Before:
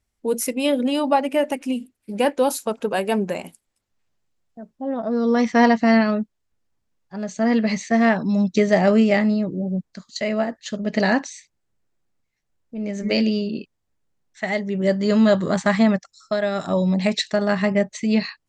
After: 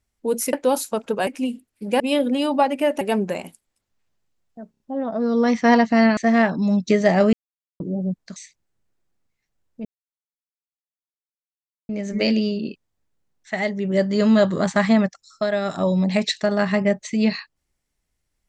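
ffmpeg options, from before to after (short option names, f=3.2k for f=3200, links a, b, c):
-filter_complex "[0:a]asplit=13[a][b][c][d][e][f][g][h][i][j][k][l][m];[a]atrim=end=0.532[n];[b]atrim=start=2.268:end=3.012[o];[c]atrim=start=1.538:end=2.272[p];[d]atrim=start=0.528:end=1.542[q];[e]atrim=start=3.008:end=4.742[r];[f]atrim=start=4.708:end=4.742[s];[g]atrim=start=4.708:end=4.742[t];[h]atrim=start=4.708:end=6.082[u];[i]atrim=start=7.838:end=9,asetpts=PTS-STARTPTS,afade=t=out:st=1.158:d=0.004:c=hsin[v];[j]atrim=start=9:end=9.47,asetpts=PTS-STARTPTS,volume=0[w];[k]atrim=start=9.47:end=10.032,asetpts=PTS-STARTPTS,afade=t=in:d=0.004:c=hsin[x];[l]atrim=start=11.298:end=12.79,asetpts=PTS-STARTPTS,afade=t=out:st=1.488:d=0.004:c=hsin,apad=pad_dur=2.04[y];[m]atrim=start=12.79,asetpts=PTS-STARTPTS,afade=t=in:d=0.004:c=hsin[z];[n][o]acrossfade=d=0.004:c1=hsin:c2=hsin[aa];[aa][p]acrossfade=d=0.004:c1=hsin:c2=hsin[ab];[ab][q]acrossfade=d=0.004:c1=hsin:c2=hsin[ac];[ac][r]acrossfade=d=0.004:c1=hsin:c2=hsin[ad];[ad][s]acrossfade=d=0.004:c1=hsin:c2=hsin[ae];[ae][t]acrossfade=d=0.004:c1=hsin:c2=hsin[af];[af][u]acrossfade=d=0.004:c1=hsin:c2=hsin[ag];[v][w][x]concat=n=3:v=0:a=1[ah];[ag][ah]acrossfade=d=0.004:c1=hsin:c2=hsin[ai];[y][z]concat=n=2:v=0:a=1[aj];[ai][aj]acrossfade=d=0.004:c1=hsin:c2=hsin"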